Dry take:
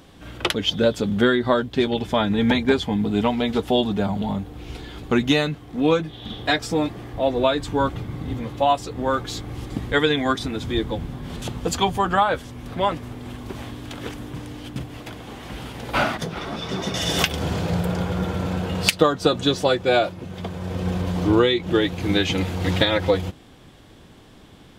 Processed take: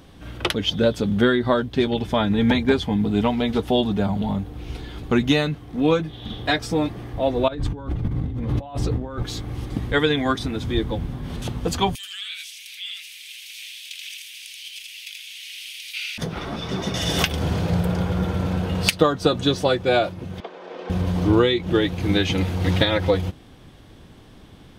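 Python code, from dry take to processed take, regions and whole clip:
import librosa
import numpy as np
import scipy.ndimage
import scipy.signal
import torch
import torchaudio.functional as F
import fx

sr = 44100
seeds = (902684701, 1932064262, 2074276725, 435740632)

y = fx.chain(x, sr, fx.tilt_eq(slope=-2.0),
    fx.over_compress(threshold_db=-29.0, ratio=-1.0), at=(7.48, 9.23))
y = fx.chain(y, sr, fx.ellip_highpass(hz=2400.0, order=4, stop_db=60),
    fx.echo_single(ms=81, db=-3.5),
    fx.env_flatten(amount_pct=50), at=(11.95, 16.18))
y = fx.chain(y, sr, fx.highpass(hz=360.0, slope=24),
    fx.air_absorb(metres=160.0), at=(20.4, 20.9))
y = fx.low_shelf(y, sr, hz=160.0, db=5.5)
y = fx.notch(y, sr, hz=7300.0, q=11.0)
y = y * librosa.db_to_amplitude(-1.0)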